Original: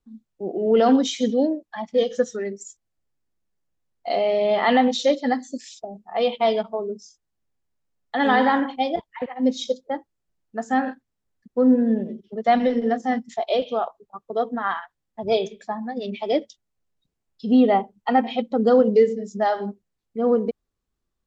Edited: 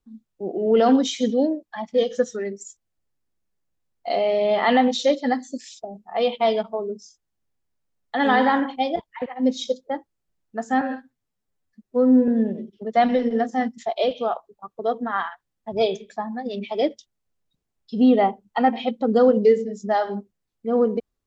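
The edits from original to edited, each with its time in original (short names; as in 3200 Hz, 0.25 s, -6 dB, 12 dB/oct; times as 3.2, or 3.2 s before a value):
10.81–11.79 stretch 1.5×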